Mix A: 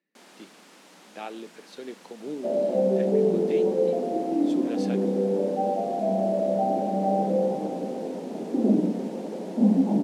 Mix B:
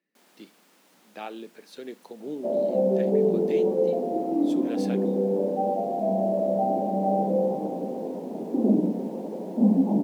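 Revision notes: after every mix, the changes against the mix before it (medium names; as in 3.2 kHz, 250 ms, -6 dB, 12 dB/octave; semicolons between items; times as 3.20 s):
first sound -9.0 dB; master: remove low-pass 8.9 kHz 12 dB/octave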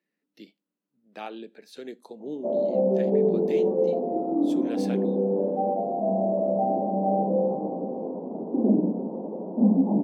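first sound: muted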